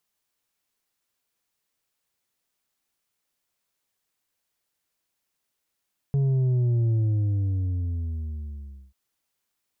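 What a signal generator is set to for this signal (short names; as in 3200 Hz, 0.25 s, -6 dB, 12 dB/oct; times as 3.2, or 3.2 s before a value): sub drop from 140 Hz, over 2.79 s, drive 5 dB, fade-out 2.01 s, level -20 dB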